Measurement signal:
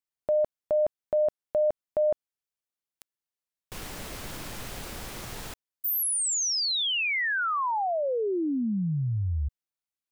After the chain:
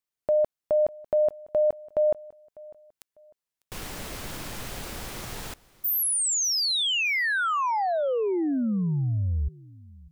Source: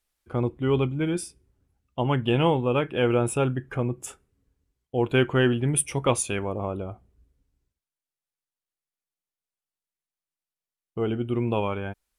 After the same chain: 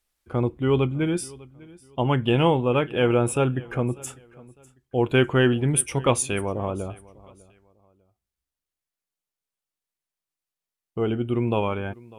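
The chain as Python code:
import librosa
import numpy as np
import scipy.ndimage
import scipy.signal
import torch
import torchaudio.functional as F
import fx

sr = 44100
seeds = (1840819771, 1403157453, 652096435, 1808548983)

y = fx.echo_feedback(x, sr, ms=599, feedback_pct=29, wet_db=-22.5)
y = y * librosa.db_to_amplitude(2.0)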